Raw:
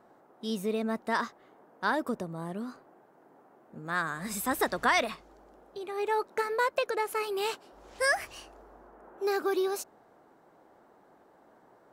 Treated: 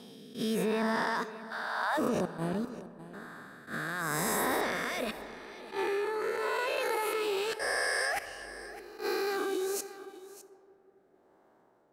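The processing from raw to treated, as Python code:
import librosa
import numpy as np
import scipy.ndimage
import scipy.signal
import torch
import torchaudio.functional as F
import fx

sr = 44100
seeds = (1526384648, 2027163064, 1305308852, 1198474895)

y = fx.spec_swells(x, sr, rise_s=1.65)
y = fx.cheby1_highpass(y, sr, hz=650.0, order=5, at=(1.22, 1.97), fade=0.02)
y = fx.level_steps(y, sr, step_db=18)
y = fx.rotary(y, sr, hz=0.85)
y = y + 10.0 ** (-16.0 / 20.0) * np.pad(y, (int(607 * sr / 1000.0), 0))[:len(y)]
y = fx.rev_freeverb(y, sr, rt60_s=3.0, hf_ratio=0.4, predelay_ms=25, drr_db=14.5)
y = fx.attack_slew(y, sr, db_per_s=190.0)
y = y * 10.0 ** (7.0 / 20.0)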